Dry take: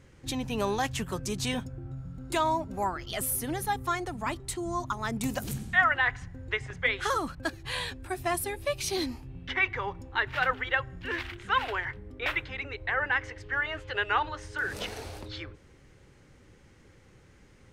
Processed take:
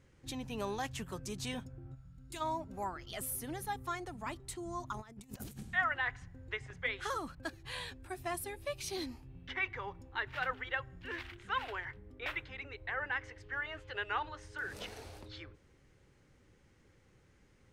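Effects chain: 1.94–2.40 s: peaking EQ 250 Hz -> 890 Hz -13.5 dB 2.8 oct; 4.94–5.63 s: compressor with a negative ratio -38 dBFS, ratio -0.5; trim -9 dB

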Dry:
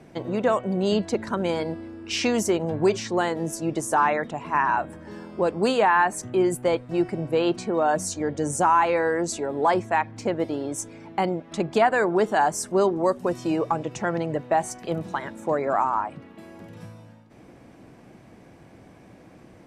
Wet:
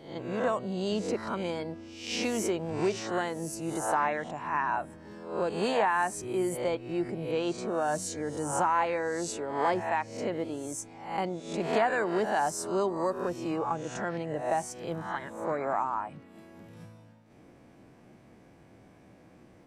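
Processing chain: reverse spectral sustain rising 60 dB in 0.60 s; trim -8.5 dB

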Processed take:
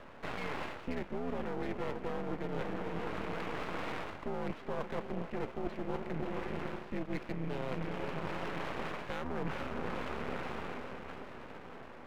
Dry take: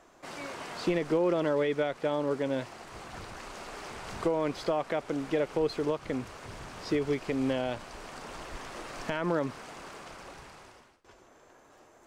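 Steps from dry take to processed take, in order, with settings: mistuned SSB -100 Hz 170–2900 Hz; echo that smears into a reverb 459 ms, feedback 53%, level -9.5 dB; half-wave rectifier; reverse; compression 12:1, threshold -43 dBFS, peak gain reduction 19.5 dB; reverse; trim +11 dB

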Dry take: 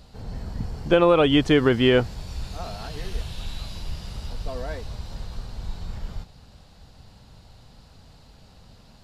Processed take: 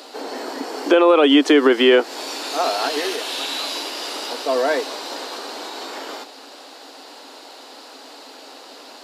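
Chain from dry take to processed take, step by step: compression 6:1, threshold -24 dBFS, peak gain reduction 11.5 dB; Chebyshev high-pass 270 Hz, order 6; loudness maximiser +20.5 dB; trim -3.5 dB

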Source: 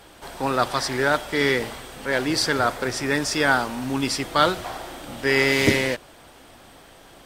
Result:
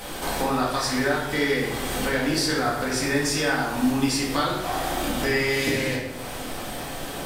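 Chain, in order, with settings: treble shelf 7.5 kHz +8 dB; compression 4:1, threshold -38 dBFS, peak gain reduction 21 dB; simulated room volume 340 m³, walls mixed, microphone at 2 m; trim +8 dB

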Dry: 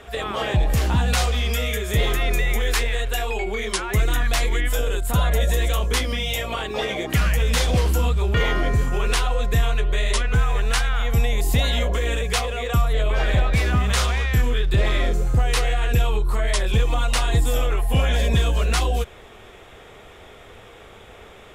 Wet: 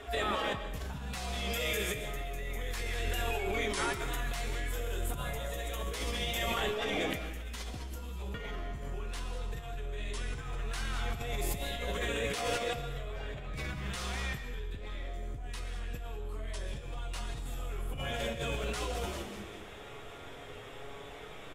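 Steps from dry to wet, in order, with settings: feedback comb 140 Hz, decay 1 s, harmonics all, mix 80%; in parallel at -11.5 dB: hard clipper -30 dBFS, distortion -13 dB; on the sum: flange 0.13 Hz, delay 2.8 ms, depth 7.8 ms, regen -34%; frequency-shifting echo 196 ms, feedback 44%, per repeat -130 Hz, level -12.5 dB; compressor with a negative ratio -41 dBFS, ratio -1; on a send at -9.5 dB: reverberation RT60 0.85 s, pre-delay 90 ms; on the sum: trim +4 dB

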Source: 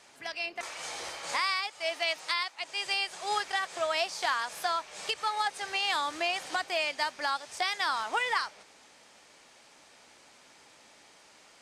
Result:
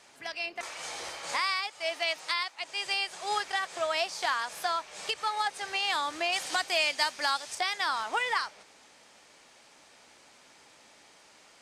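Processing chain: 6.32–7.55 s: treble shelf 2.8 kHz +8.5 dB

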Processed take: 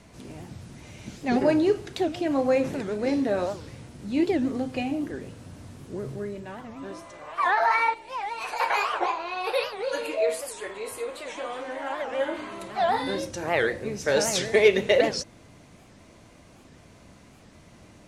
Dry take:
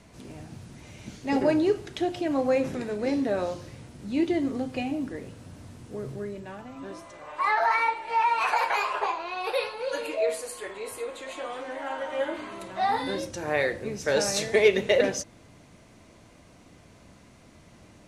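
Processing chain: 7.94–8.60 s: peaking EQ 1.3 kHz -12.5 dB 2.4 oct; warped record 78 rpm, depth 250 cents; trim +1.5 dB

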